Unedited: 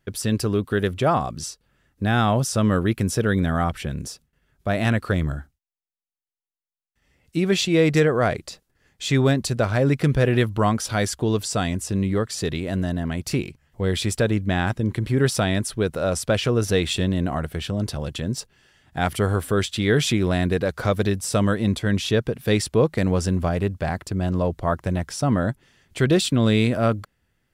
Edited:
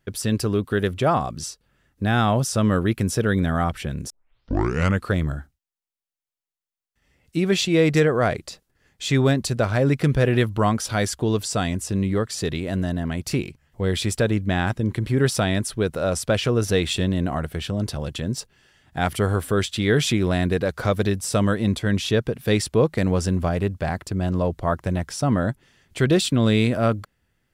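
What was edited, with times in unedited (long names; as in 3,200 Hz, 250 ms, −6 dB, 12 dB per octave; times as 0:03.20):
0:04.10: tape start 0.96 s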